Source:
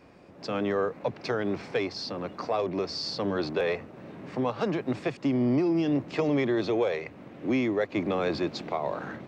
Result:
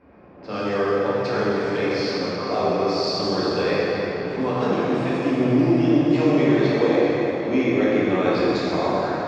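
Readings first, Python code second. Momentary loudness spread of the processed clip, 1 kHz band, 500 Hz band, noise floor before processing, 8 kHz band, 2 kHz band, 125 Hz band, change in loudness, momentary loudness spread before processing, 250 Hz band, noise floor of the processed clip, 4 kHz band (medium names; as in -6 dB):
7 LU, +8.5 dB, +8.0 dB, -50 dBFS, no reading, +8.0 dB, +8.5 dB, +8.0 dB, 10 LU, +8.0 dB, -39 dBFS, +7.0 dB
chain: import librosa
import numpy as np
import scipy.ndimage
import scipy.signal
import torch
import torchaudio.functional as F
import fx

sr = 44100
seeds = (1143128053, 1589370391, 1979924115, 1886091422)

y = fx.rev_plate(x, sr, seeds[0], rt60_s=4.2, hf_ratio=0.7, predelay_ms=0, drr_db=-9.0)
y = fx.env_lowpass(y, sr, base_hz=1800.0, full_db=-16.5)
y = y * 10.0 ** (-1.5 / 20.0)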